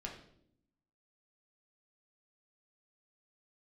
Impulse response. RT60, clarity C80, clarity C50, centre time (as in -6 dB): 0.70 s, 10.0 dB, 7.0 dB, 26 ms